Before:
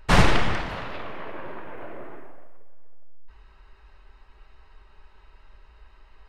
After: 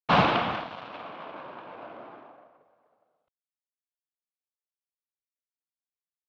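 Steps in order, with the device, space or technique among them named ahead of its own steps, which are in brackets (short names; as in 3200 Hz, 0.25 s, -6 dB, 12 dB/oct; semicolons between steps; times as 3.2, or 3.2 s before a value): blown loudspeaker (crossover distortion -34 dBFS; speaker cabinet 190–3800 Hz, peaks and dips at 390 Hz -7 dB, 730 Hz +4 dB, 1100 Hz +3 dB, 1900 Hz -9 dB)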